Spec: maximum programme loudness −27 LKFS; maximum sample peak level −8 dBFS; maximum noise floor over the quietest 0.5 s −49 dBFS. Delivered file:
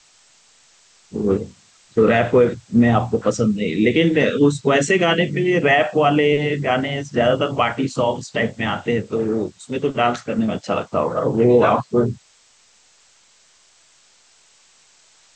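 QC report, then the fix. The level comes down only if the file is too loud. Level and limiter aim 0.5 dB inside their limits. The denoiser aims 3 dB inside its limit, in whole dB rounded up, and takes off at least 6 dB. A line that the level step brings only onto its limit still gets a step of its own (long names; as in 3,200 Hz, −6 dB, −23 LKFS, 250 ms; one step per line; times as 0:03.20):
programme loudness −18.5 LKFS: out of spec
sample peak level −5.5 dBFS: out of spec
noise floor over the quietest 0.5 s −55 dBFS: in spec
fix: level −9 dB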